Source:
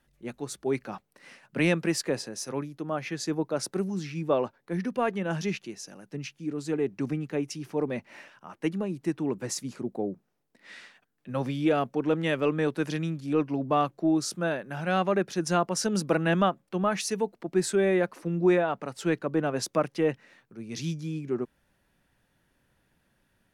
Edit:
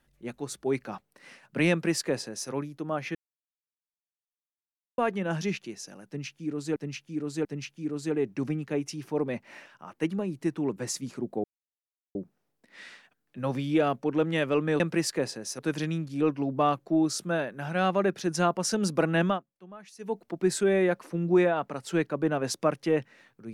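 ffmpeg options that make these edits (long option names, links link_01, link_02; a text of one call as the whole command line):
ffmpeg -i in.wav -filter_complex "[0:a]asplit=10[link_01][link_02][link_03][link_04][link_05][link_06][link_07][link_08][link_09][link_10];[link_01]atrim=end=3.15,asetpts=PTS-STARTPTS,afade=type=out:start_time=3.146:duration=0.004:curve=hsin[link_11];[link_02]atrim=start=3.15:end=4.98,asetpts=PTS-STARTPTS,volume=0[link_12];[link_03]atrim=start=4.98:end=6.762,asetpts=PTS-STARTPTS,afade=type=in:duration=0.004:curve=hsin[link_13];[link_04]atrim=start=6.068:end=6.762[link_14];[link_05]atrim=start=6.068:end=10.06,asetpts=PTS-STARTPTS,afade=type=out:start_time=3.988:duration=0.004:curve=hsin,apad=pad_dur=0.71[link_15];[link_06]atrim=start=10.06:end=12.712,asetpts=PTS-STARTPTS,afade=type=in:duration=0.004:curve=hsin[link_16];[link_07]atrim=start=1.708:end=2.502[link_17];[link_08]atrim=start=12.708:end=16.56,asetpts=PTS-STARTPTS,afade=type=out:start_time=3.652:duration=0.2:silence=0.1[link_18];[link_09]atrim=start=16.56:end=17.1,asetpts=PTS-STARTPTS,volume=-20dB[link_19];[link_10]atrim=start=17.1,asetpts=PTS-STARTPTS,afade=type=in:duration=0.2:silence=0.1[link_20];[link_11][link_12][link_13]concat=n=3:v=0:a=1[link_21];[link_21][link_14]acrossfade=duration=0.004:curve1=hsin:curve2=hsin[link_22];[link_15][link_16]concat=n=2:v=0:a=1[link_23];[link_22][link_23]acrossfade=duration=0.004:curve1=hsin:curve2=hsin[link_24];[link_24][link_17]acrossfade=duration=0.004:curve1=hsin:curve2=hsin[link_25];[link_18][link_19][link_20]concat=n=3:v=0:a=1[link_26];[link_25][link_26]acrossfade=duration=0.004:curve1=hsin:curve2=hsin" out.wav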